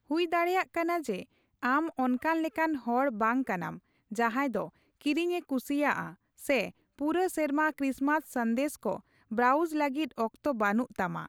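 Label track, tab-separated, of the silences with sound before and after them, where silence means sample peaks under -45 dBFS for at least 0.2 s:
1.230000	1.630000	silence
3.780000	4.110000	silence
4.690000	5.010000	silence
6.140000	6.400000	silence
6.700000	6.990000	silence
8.990000	9.310000	silence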